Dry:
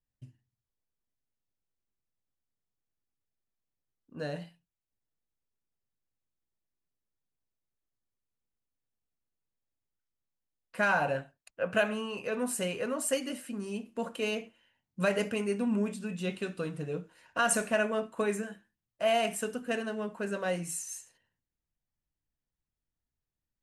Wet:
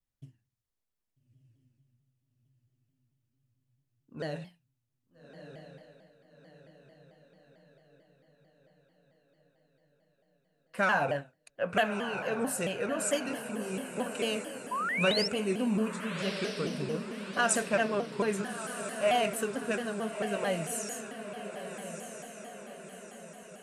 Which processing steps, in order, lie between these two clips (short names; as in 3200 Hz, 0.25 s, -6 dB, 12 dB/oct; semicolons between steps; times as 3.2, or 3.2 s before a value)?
painted sound rise, 14.71–15.28, 900–5900 Hz -32 dBFS; diffused feedback echo 1.282 s, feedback 52%, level -9 dB; shaped vibrato saw down 4.5 Hz, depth 160 cents